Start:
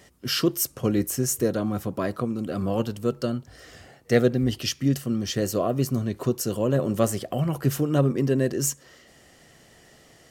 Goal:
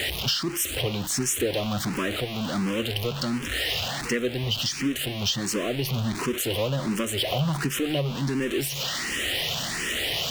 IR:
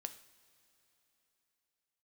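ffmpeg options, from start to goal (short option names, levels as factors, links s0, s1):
-filter_complex "[0:a]aeval=exprs='val(0)+0.5*0.0596*sgn(val(0))':c=same,equalizer=f=3000:t=o:w=1.2:g=12.5,acompressor=threshold=0.1:ratio=6,asplit=2[s0][s1];[s1]afreqshift=1.4[s2];[s0][s2]amix=inputs=2:normalize=1"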